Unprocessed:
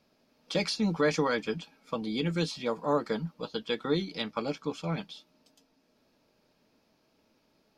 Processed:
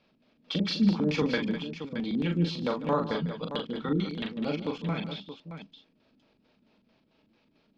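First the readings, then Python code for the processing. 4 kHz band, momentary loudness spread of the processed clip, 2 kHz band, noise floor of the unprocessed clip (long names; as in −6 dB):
+0.5 dB, 12 LU, −1.0 dB, −71 dBFS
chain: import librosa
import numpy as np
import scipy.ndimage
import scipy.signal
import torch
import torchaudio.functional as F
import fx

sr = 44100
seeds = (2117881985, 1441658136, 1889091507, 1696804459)

y = fx.filter_lfo_lowpass(x, sr, shape='square', hz=4.5, low_hz=250.0, high_hz=3300.0, q=1.7)
y = fx.echo_multitap(y, sr, ms=(40, 148, 202, 622), db=(-5.0, -15.5, -11.0, -10.5))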